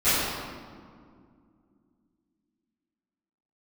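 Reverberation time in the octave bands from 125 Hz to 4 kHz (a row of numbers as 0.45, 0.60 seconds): 2.9, 3.5, 2.3, 2.0, 1.4, 1.1 seconds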